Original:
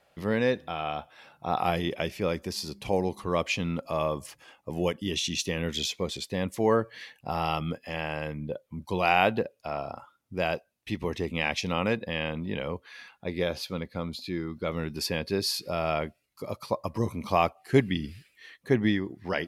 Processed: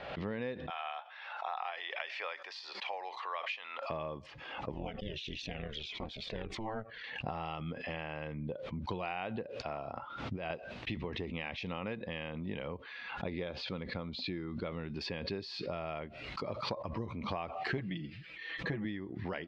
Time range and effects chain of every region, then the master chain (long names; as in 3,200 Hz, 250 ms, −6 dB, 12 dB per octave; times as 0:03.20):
0:00.70–0:03.90: high-pass filter 750 Hz 24 dB per octave + parametric band 1,800 Hz +4.5 dB 0.29 octaves
0:04.72–0:07.04: amplitude modulation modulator 220 Hz, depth 90% + flanger whose copies keep moving one way falling 1.6 Hz
0:09.96–0:10.50: low-pass filter 10,000 Hz + compressor whose output falls as the input rises −36 dBFS
0:17.77–0:18.85: comb filter 6.1 ms, depth 90% + saturating transformer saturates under 300 Hz
whole clip: downward compressor 6 to 1, threshold −36 dBFS; low-pass filter 3,800 Hz 24 dB per octave; background raised ahead of every attack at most 44 dB per second